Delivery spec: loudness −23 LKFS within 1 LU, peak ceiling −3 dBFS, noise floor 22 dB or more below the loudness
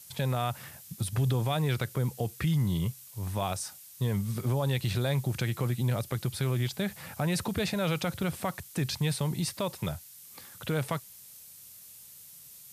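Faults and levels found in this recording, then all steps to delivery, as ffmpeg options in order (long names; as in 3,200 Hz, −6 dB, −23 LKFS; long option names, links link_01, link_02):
background noise floor −51 dBFS; target noise floor −53 dBFS; integrated loudness −31.0 LKFS; sample peak −15.5 dBFS; target loudness −23.0 LKFS
→ -af "afftdn=noise_reduction=6:noise_floor=-51"
-af "volume=8dB"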